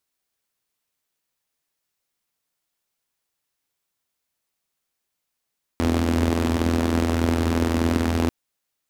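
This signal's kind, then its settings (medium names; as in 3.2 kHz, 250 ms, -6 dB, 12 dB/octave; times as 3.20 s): four-cylinder engine model, steady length 2.49 s, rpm 2500, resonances 85/240 Hz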